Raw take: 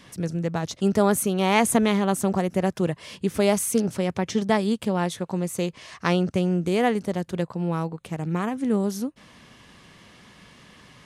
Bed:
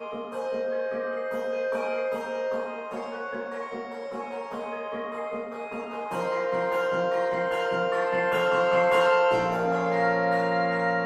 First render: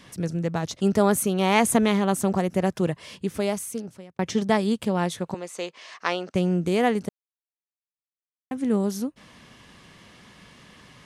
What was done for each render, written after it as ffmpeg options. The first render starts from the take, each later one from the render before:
-filter_complex "[0:a]asettb=1/sr,asplit=3[a][b][c];[a]atrim=end=5.344[d];[b]atrim=start=5.34:end=6.35,asetpts=PTS-STARTPTS,afade=t=in:d=0.004:c=qsin,afade=t=out:st=1.006:d=0.004:c=qsin,highpass=500,lowpass=6.6k[e];[c]atrim=start=6.346[f];[d][e]acrossfade=d=0.004:c1=hsin:c2=qsin[g];[g][f]acrossfade=d=0.004:c1=qsin:c2=hsin,asplit=4[h][i][j][k];[h]atrim=end=4.19,asetpts=PTS-STARTPTS,afade=t=out:st=2.88:d=1.31[l];[i]atrim=start=4.19:end=7.09,asetpts=PTS-STARTPTS,afade=t=in:d=0.004:c=hsin,afade=t=out:st=2.896:d=0.004:c=hsin[m];[j]atrim=start=7.09:end=8.51,asetpts=PTS-STARTPTS,volume=0[n];[k]atrim=start=8.51,asetpts=PTS-STARTPTS,afade=t=in:d=0.004:c=hsin[o];[l][m][n][o]concat=n=4:v=0:a=1"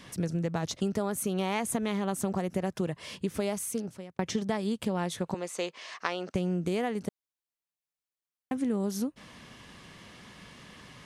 -af "acompressor=threshold=-26dB:ratio=12"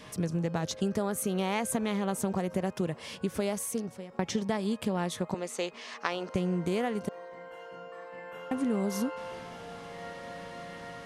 -filter_complex "[1:a]volume=-19dB[a];[0:a][a]amix=inputs=2:normalize=0"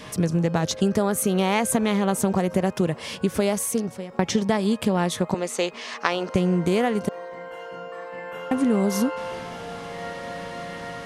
-af "volume=8.5dB"

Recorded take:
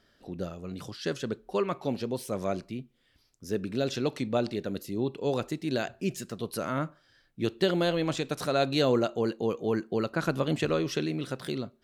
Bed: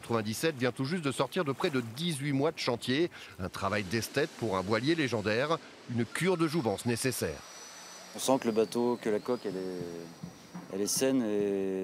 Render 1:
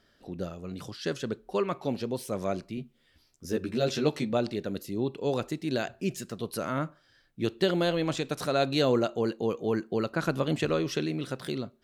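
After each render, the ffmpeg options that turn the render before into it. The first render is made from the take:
-filter_complex "[0:a]asettb=1/sr,asplit=3[a][b][c];[a]atrim=end=2.764[d];[b]atrim=start=2.76:end=4.33,asetpts=PTS-STARTPTS,afade=t=in:d=0.004:c=qsin,afade=t=out:st=1.566:d=0.004:c=qsin,asplit=2[e][f];[f]adelay=13,volume=-2dB[g];[e][g]amix=inputs=2:normalize=0,atrim=end_sample=69237[h];[c]atrim=start=4.326[i];[d][h]acrossfade=d=0.004:c1=hsin:c2=qsin[j];[j][i]acrossfade=d=0.004:c1=qsin:c2=hsin"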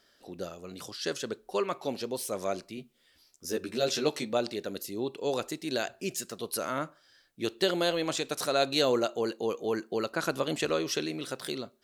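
-af "bass=f=250:g=-11,treble=f=4k:g=7"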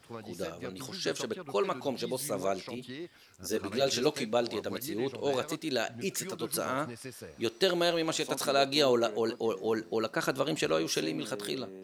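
-filter_complex "[1:a]volume=-13dB[a];[0:a][a]amix=inputs=2:normalize=0"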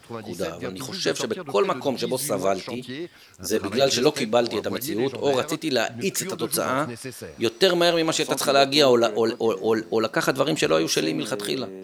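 -af "volume=8.5dB"

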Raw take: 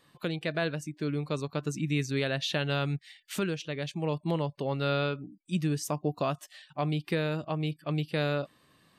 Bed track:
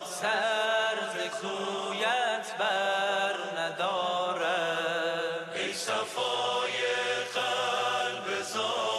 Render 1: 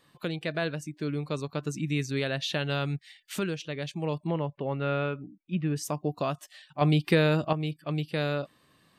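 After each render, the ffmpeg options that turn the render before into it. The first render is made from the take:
-filter_complex "[0:a]asettb=1/sr,asplit=3[a][b][c];[a]atrim=end=4.274[d];[b]atrim=start=4.27:end=5.76,asetpts=PTS-STARTPTS,afade=t=in:d=0.004:c=qsin,afade=t=out:st=1.486:d=0.004:c=qsin,lowpass=f=2.8k:w=0.5412,lowpass=f=2.8k:w=1.3066[e];[c]atrim=start=5.756[f];[d][e]acrossfade=d=0.004:c1=hsin:c2=qsin[g];[g][f]acrossfade=d=0.004:c1=qsin:c2=hsin,asettb=1/sr,asplit=3[h][i][j];[h]atrim=end=6.814[k];[i]atrim=start=6.81:end=7.53,asetpts=PTS-STARTPTS,afade=t=in:d=0.004:c=qsin,afade=t=out:st=0.716:d=0.004:c=qsin,acontrast=85[l];[j]atrim=start=7.526[m];[k][l]acrossfade=d=0.004:c1=hsin:c2=qsin[n];[n][m]acrossfade=d=0.004:c1=qsin:c2=hsin"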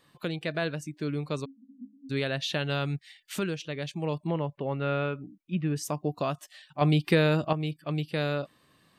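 -filter_complex "[0:a]asplit=3[a][b][c];[a]afade=t=out:st=1.44:d=0.02[d];[b]asuperpass=centerf=240:order=20:qfactor=3.8,afade=t=in:st=1.44:d=0.02,afade=t=out:st=2.09:d=0.02[e];[c]afade=t=in:st=2.09:d=0.02[f];[d][e][f]amix=inputs=3:normalize=0"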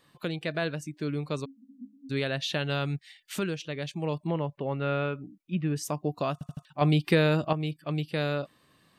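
-filter_complex "[0:a]asplit=5[a][b][c][d][e];[a]atrim=end=6.412[f];[b]atrim=start=6.328:end=6.412[g];[c]atrim=start=6.328:end=6.412[h];[d]atrim=start=6.328:end=6.412[i];[e]atrim=start=6.648[j];[f][g]acrossfade=d=0.004:c1=hsin:c2=hsin[k];[k][h]acrossfade=d=0.004:c1=hsin:c2=hsin[l];[l][i]acrossfade=d=0.004:c1=hsin:c2=hsin[m];[m][j]acrossfade=d=0.004:c1=hsin:c2=hsin"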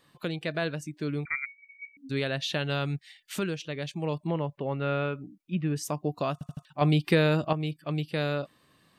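-filter_complex "[0:a]asettb=1/sr,asplit=3[a][b][c];[a]atrim=end=1.254[d];[b]atrim=start=1.25:end=1.97,asetpts=PTS-STARTPTS,afade=t=in:d=0.004:c=qsin,afade=t=out:st=0.716:d=0.004:c=qsin,lowpass=f=2.1k:t=q:w=0.5098,lowpass=f=2.1k:t=q:w=0.6013,lowpass=f=2.1k:t=q:w=0.9,lowpass=f=2.1k:t=q:w=2.563,afreqshift=-2500[e];[c]atrim=start=1.966[f];[d][e]acrossfade=d=0.004:c1=hsin:c2=qsin[g];[g][f]acrossfade=d=0.004:c1=qsin:c2=hsin"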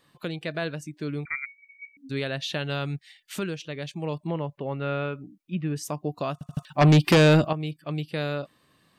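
-filter_complex "[0:a]asplit=3[a][b][c];[a]afade=t=out:st=6.52:d=0.02[d];[b]aeval=exprs='0.251*sin(PI/2*2*val(0)/0.251)':c=same,afade=t=in:st=6.52:d=0.02,afade=t=out:st=7.46:d=0.02[e];[c]afade=t=in:st=7.46:d=0.02[f];[d][e][f]amix=inputs=3:normalize=0"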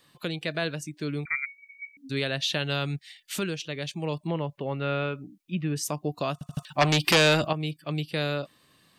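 -filter_complex "[0:a]acrossover=split=540|2400[a][b][c];[a]alimiter=limit=-21.5dB:level=0:latency=1[d];[c]acontrast=35[e];[d][b][e]amix=inputs=3:normalize=0"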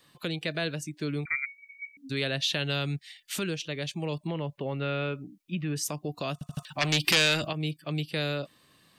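-filter_complex "[0:a]acrossover=split=780|1400[a][b][c];[a]alimiter=level_in=1dB:limit=-24dB:level=0:latency=1,volume=-1dB[d];[b]acompressor=threshold=-48dB:ratio=6[e];[d][e][c]amix=inputs=3:normalize=0"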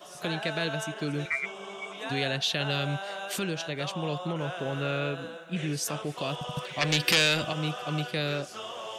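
-filter_complex "[1:a]volume=-9dB[a];[0:a][a]amix=inputs=2:normalize=0"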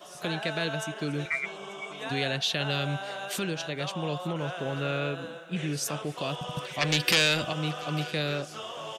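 -af "aecho=1:1:889:0.0841"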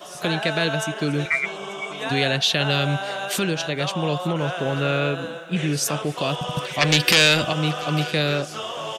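-af "volume=8dB,alimiter=limit=-3dB:level=0:latency=1"

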